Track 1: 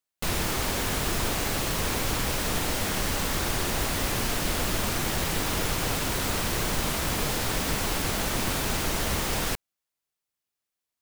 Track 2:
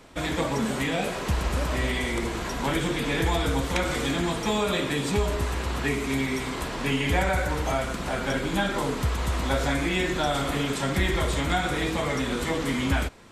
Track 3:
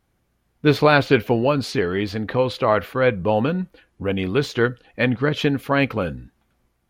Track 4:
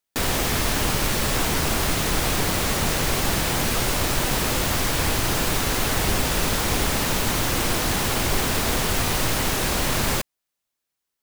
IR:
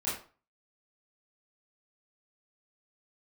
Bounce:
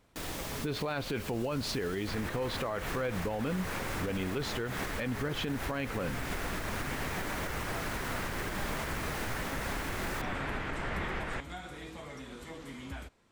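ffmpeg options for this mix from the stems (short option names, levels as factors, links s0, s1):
-filter_complex "[0:a]lowpass=f=1900:t=q:w=1.8,adelay=1850,volume=0.473[s0];[1:a]volume=0.126[s1];[2:a]volume=0.794[s2];[3:a]volume=0.15,asplit=2[s3][s4];[s4]volume=0.0794,aecho=0:1:128:1[s5];[s0][s1][s2][s3][s5]amix=inputs=5:normalize=0,alimiter=level_in=1.12:limit=0.0631:level=0:latency=1:release=167,volume=0.891"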